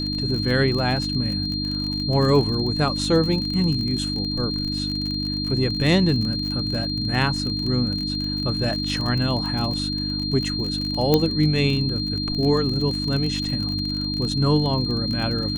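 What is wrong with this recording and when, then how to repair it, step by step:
surface crackle 33 per second −26 dBFS
mains hum 50 Hz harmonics 6 −28 dBFS
whistle 4,200 Hz −27 dBFS
0:11.14: click −4 dBFS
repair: click removal
hum removal 50 Hz, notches 6
notch filter 4,200 Hz, Q 30

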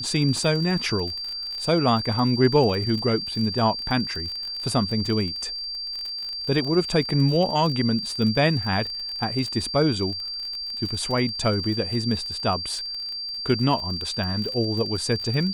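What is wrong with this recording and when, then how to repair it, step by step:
surface crackle 39 per second −29 dBFS
whistle 4,700 Hz −29 dBFS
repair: click removal
notch filter 4,700 Hz, Q 30

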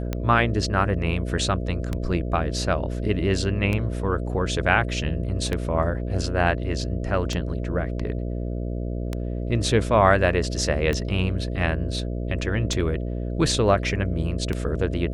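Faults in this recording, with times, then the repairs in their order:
mains buzz 60 Hz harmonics 11 −28 dBFS
scratch tick 33 1/3 rpm −13 dBFS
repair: click removal
hum removal 60 Hz, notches 11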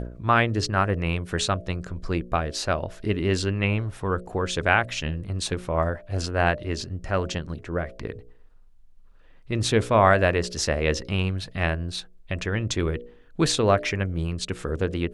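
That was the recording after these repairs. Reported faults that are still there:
none of them is left

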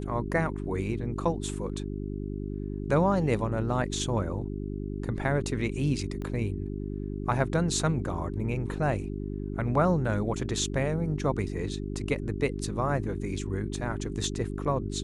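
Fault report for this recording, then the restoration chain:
mains hum 50 Hz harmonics 8 −34 dBFS
0:06.22: click −26 dBFS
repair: click removal
hum removal 50 Hz, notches 8

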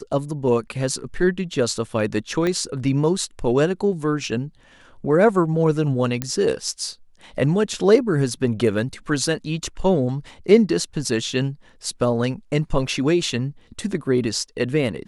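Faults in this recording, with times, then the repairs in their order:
0:02.47: click −11 dBFS
0:06.22: click −8 dBFS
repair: click removal

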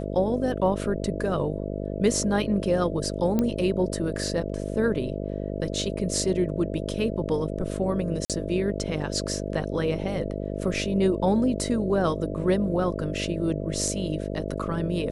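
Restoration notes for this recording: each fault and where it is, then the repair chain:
mains buzz 50 Hz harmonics 13 −31 dBFS
0:03.39: click −12 dBFS
0:08.25–0:08.30: drop-out 47 ms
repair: click removal
hum removal 50 Hz, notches 13
repair the gap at 0:08.25, 47 ms

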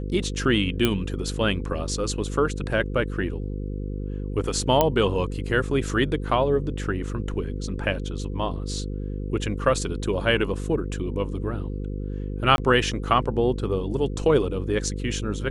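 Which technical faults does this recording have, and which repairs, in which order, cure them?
mains buzz 50 Hz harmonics 10 −30 dBFS
0:00.85: click −7 dBFS
0:04.81: click −5 dBFS
0:12.56–0:12.58: drop-out 21 ms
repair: click removal
hum removal 50 Hz, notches 10
repair the gap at 0:12.56, 21 ms

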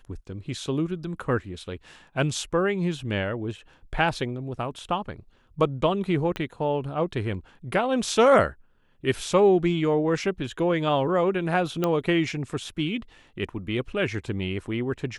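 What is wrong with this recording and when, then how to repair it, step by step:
0:06.36: click −17 dBFS
0:11.84: click −11 dBFS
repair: click removal

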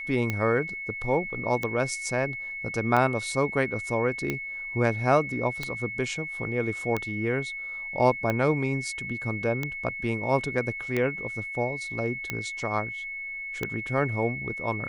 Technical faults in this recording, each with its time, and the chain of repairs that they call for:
scratch tick 45 rpm −14 dBFS
whistle 2,200 Hz −33 dBFS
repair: click removal
notch filter 2,200 Hz, Q 30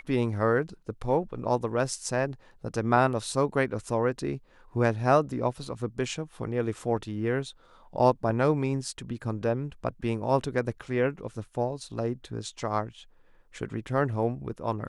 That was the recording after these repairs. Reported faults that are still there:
none of them is left

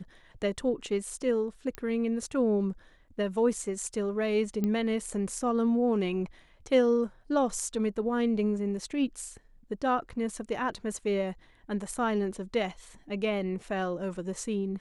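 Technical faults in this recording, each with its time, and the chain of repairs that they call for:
0:01.75: click −22 dBFS
0:04.64: click −18 dBFS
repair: click removal

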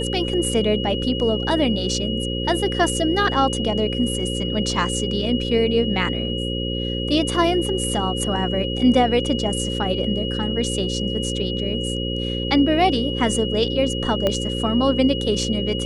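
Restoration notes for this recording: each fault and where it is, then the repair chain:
mains buzz 60 Hz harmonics 9 −26 dBFS
whistle 2,900 Hz −28 dBFS
0:14.27: click −8 dBFS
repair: click removal
notch filter 2,900 Hz, Q 30
hum removal 60 Hz, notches 9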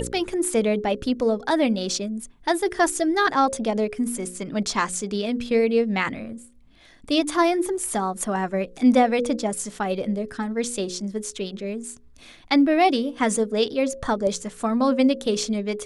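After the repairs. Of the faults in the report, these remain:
0:14.27: click

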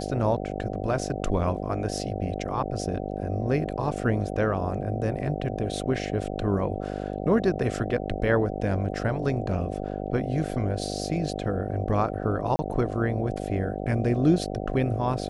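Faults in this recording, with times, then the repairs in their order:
mains buzz 50 Hz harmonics 15 −32 dBFS
0:12.56–0:12.59: drop-out 30 ms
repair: hum removal 50 Hz, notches 15
repair the gap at 0:12.56, 30 ms

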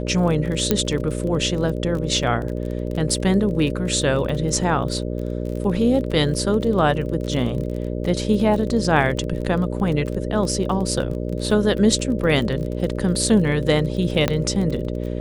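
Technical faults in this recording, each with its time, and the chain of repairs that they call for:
mains buzz 60 Hz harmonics 10 −26 dBFS
surface crackle 31 per second −28 dBFS
0:00.71: click −3 dBFS
0:14.28: click −5 dBFS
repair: click removal
hum removal 60 Hz, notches 10

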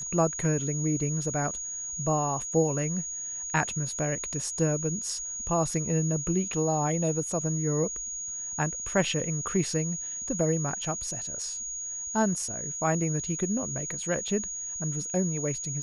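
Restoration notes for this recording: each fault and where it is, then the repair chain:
whistle 6,700 Hz −33 dBFS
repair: notch filter 6,700 Hz, Q 30

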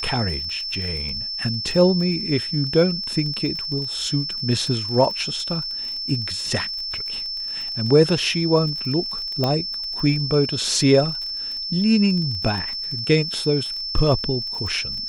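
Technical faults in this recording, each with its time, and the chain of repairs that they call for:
surface crackle 28 per second −29 dBFS
whistle 5,300 Hz −26 dBFS
0:01.09: drop-out 2.8 ms
0:09.44: click −9 dBFS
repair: click removal
notch filter 5,300 Hz, Q 30
repair the gap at 0:01.09, 2.8 ms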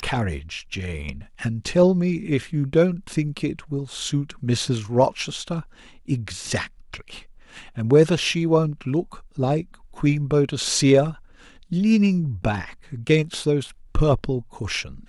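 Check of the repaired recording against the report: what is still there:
0:09.44: click

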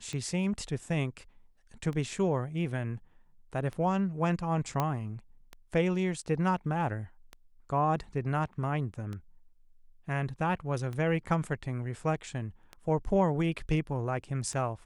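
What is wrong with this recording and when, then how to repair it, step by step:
scratch tick 33 1/3 rpm −26 dBFS
0:04.80: click −15 dBFS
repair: click removal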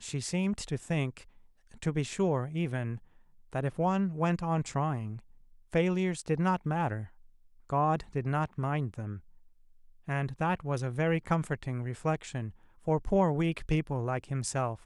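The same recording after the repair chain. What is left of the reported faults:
none of them is left

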